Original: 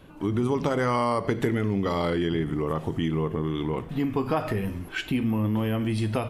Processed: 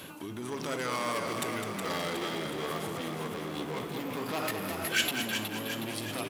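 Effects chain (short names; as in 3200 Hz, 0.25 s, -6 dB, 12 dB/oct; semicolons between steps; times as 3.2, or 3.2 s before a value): low shelf 440 Hz +8.5 dB; limiter -20 dBFS, peak gain reduction 14.5 dB; AGC gain up to 8.5 dB; in parallel at -8 dB: sine folder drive 5 dB, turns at -11.5 dBFS; on the sum: HPF 75 Hz 12 dB/oct; hard clip -12 dBFS, distortion -16 dB; frequency-shifting echo 0.367 s, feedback 57%, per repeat +44 Hz, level -6 dB; reverse; compressor 8:1, threshold -27 dBFS, peak gain reduction 15.5 dB; reverse; tilt +4.5 dB/oct; echo 0.207 s -8 dB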